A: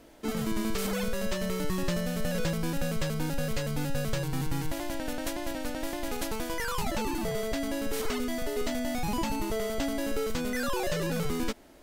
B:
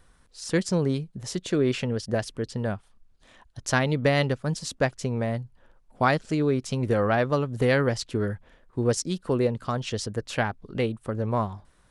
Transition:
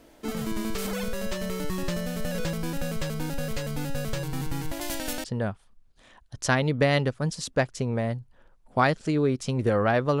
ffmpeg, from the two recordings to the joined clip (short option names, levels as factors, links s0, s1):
-filter_complex "[0:a]asettb=1/sr,asplit=3[s0][s1][s2];[s0]atrim=end=4.814[s3];[s1]atrim=start=4.81:end=5.24,asetpts=PTS-STARTPTS,afade=t=in:d=0.004:c=qsin,afade=t=out:st=0.426:d=0.004:c=qsin,highshelf=f=2600:g=11[s4];[s2]atrim=start=5.236[s5];[s3][s4]acrossfade=d=0.004:c1=hsin:c2=qsin[s6];[s6][s5]acrossfade=d=0.004:c1=qsin:c2=hsin,apad=whole_dur=10.2,atrim=end=10.2,atrim=end=5.242[s7];[1:a]atrim=start=2.478:end=7.44[s8];[s7][s8]acrossfade=d=0.004:c1=hsin:c2=hsin"